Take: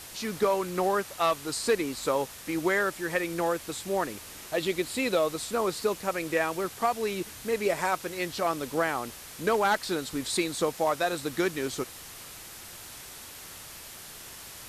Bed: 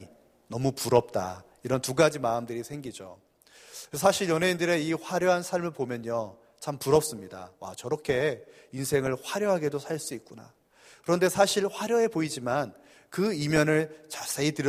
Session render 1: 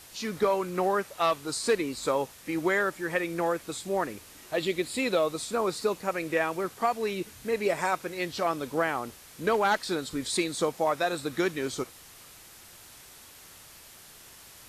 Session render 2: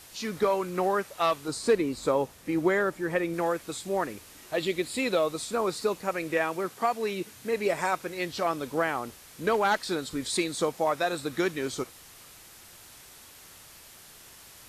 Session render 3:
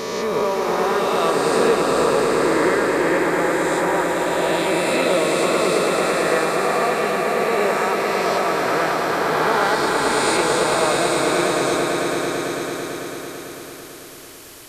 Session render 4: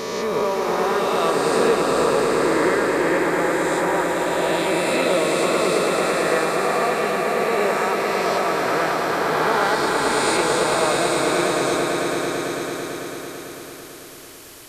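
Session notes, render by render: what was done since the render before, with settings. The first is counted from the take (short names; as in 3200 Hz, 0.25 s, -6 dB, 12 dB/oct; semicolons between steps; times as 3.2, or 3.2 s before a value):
noise print and reduce 6 dB
1.48–3.34 tilt shelf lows +4 dB; 6.38–7.57 HPF 110 Hz
spectral swells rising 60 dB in 2.47 s; swelling echo 0.111 s, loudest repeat 5, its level -7 dB
gain -1 dB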